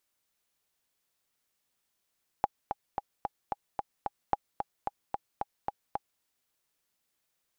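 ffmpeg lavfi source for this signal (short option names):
-f lavfi -i "aevalsrc='pow(10,(-11.5-6.5*gte(mod(t,7*60/222),60/222))/20)*sin(2*PI*816*mod(t,60/222))*exp(-6.91*mod(t,60/222)/0.03)':d=3.78:s=44100"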